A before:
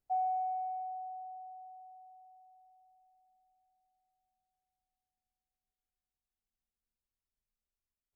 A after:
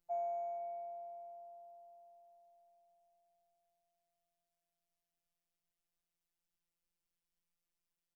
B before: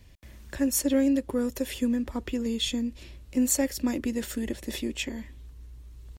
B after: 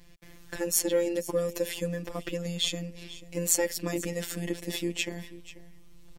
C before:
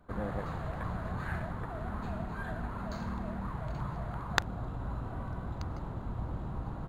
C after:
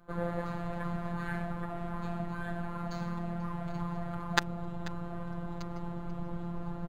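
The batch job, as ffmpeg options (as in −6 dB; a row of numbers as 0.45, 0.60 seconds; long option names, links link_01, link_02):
-af "afftfilt=real='hypot(re,im)*cos(PI*b)':imag='0':win_size=1024:overlap=0.75,aecho=1:1:488:0.141,volume=4.5dB"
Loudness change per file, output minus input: −6.0, −2.0, +0.5 LU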